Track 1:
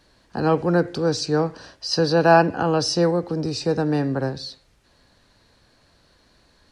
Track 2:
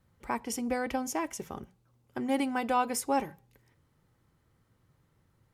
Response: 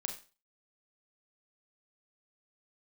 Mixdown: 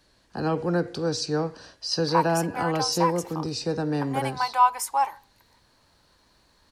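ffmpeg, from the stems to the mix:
-filter_complex "[0:a]bandreject=frequency=238.4:width_type=h:width=4,bandreject=frequency=476.8:width_type=h:width=4,bandreject=frequency=715.2:width_type=h:width=4,bandreject=frequency=953.6:width_type=h:width=4,bandreject=frequency=1192:width_type=h:width=4,bandreject=frequency=1430.4:width_type=h:width=4,bandreject=frequency=1668.8:width_type=h:width=4,bandreject=frequency=1907.2:width_type=h:width=4,bandreject=frequency=2145.6:width_type=h:width=4,bandreject=frequency=2384:width_type=h:width=4,bandreject=frequency=2622.4:width_type=h:width=4,bandreject=frequency=2860.8:width_type=h:width=4,bandreject=frequency=3099.2:width_type=h:width=4,bandreject=frequency=3337.6:width_type=h:width=4,bandreject=frequency=3576:width_type=h:width=4,bandreject=frequency=3814.4:width_type=h:width=4,bandreject=frequency=4052.8:width_type=h:width=4,bandreject=frequency=4291.2:width_type=h:width=4,bandreject=frequency=4529.6:width_type=h:width=4,bandreject=frequency=4768:width_type=h:width=4,bandreject=frequency=5006.4:width_type=h:width=4,bandreject=frequency=5244.8:width_type=h:width=4,bandreject=frequency=5483.2:width_type=h:width=4,bandreject=frequency=5721.6:width_type=h:width=4,bandreject=frequency=5960:width_type=h:width=4,bandreject=frequency=6198.4:width_type=h:width=4,bandreject=frequency=6436.8:width_type=h:width=4,bandreject=frequency=6675.2:width_type=h:width=4,acrossover=split=390[link_01][link_02];[link_02]acompressor=threshold=-19dB:ratio=6[link_03];[link_01][link_03]amix=inputs=2:normalize=0,volume=-5dB[link_04];[1:a]highpass=frequency=940:width_type=q:width=5.6,adelay=1850,volume=-1dB[link_05];[link_04][link_05]amix=inputs=2:normalize=0,highshelf=frequency=8200:gain=-7,crystalizer=i=1.5:c=0"

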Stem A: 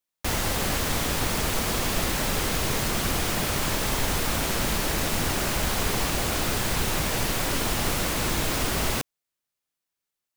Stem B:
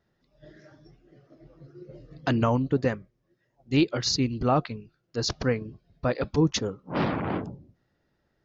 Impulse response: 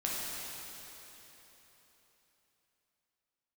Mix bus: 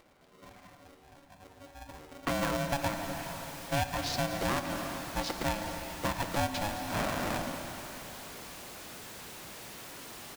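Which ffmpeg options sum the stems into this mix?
-filter_complex "[0:a]highpass=frequency=220:poles=1,asoftclip=type=hard:threshold=-31.5dB,adelay=2450,volume=-14.5dB,asplit=2[link_01][link_02];[link_02]volume=-14.5dB[link_03];[1:a]lowpass=3600,acompressor=mode=upward:threshold=-49dB:ratio=2.5,aeval=exprs='val(0)*sgn(sin(2*PI*420*n/s))':channel_layout=same,volume=-5dB,asplit=2[link_04][link_05];[link_05]volume=-10dB[link_06];[2:a]atrim=start_sample=2205[link_07];[link_03][link_06]amix=inputs=2:normalize=0[link_08];[link_08][link_07]afir=irnorm=-1:irlink=0[link_09];[link_01][link_04][link_09]amix=inputs=3:normalize=0,acompressor=threshold=-29dB:ratio=3"

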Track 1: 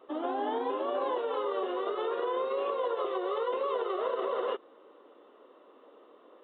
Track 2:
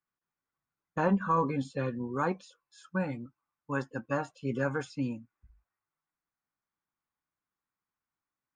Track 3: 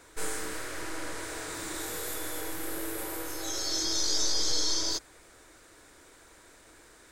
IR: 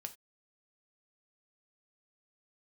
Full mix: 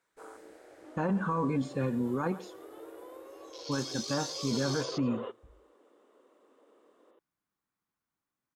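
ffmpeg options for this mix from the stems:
-filter_complex "[0:a]adelay=750,volume=-12dB,afade=type=in:start_time=4.27:duration=0.3:silence=0.281838,asplit=2[link_01][link_02];[link_02]volume=-5.5dB[link_03];[1:a]volume=0.5dB,asplit=3[link_04][link_05][link_06];[link_04]atrim=end=2.6,asetpts=PTS-STARTPTS,afade=type=out:start_time=2.596:duration=0.004:curve=hsin[link_07];[link_05]atrim=start=2.6:end=3.58,asetpts=PTS-STARTPTS,volume=0[link_08];[link_06]atrim=start=3.58,asetpts=PTS-STARTPTS,afade=type=in:duration=0.004:curve=hsin[link_09];[link_07][link_08][link_09]concat=n=3:v=0:a=1,asplit=2[link_10][link_11];[link_11]volume=-21.5dB[link_12];[2:a]afwtdn=0.0178,highpass=frequency=1100:poles=1,highshelf=frequency=2700:gain=-10.5,volume=-1dB[link_13];[link_01][link_10]amix=inputs=2:normalize=0,equalizer=frequency=230:width=0.62:gain=6,alimiter=limit=-22.5dB:level=0:latency=1:release=28,volume=0dB[link_14];[3:a]atrim=start_sample=2205[link_15];[link_03][link_15]afir=irnorm=-1:irlink=0[link_16];[link_12]aecho=0:1:127:1[link_17];[link_13][link_14][link_16][link_17]amix=inputs=4:normalize=0"

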